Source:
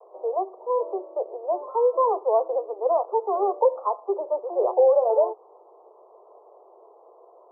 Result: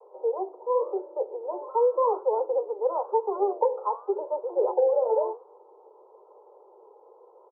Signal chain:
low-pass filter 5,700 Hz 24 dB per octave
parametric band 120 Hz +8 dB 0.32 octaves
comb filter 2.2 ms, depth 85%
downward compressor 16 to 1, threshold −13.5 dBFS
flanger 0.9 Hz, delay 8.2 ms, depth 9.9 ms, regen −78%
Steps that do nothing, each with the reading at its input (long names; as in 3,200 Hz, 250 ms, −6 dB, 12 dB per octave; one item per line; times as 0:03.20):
low-pass filter 5,700 Hz: nothing at its input above 1,200 Hz
parametric band 120 Hz: nothing at its input below 320 Hz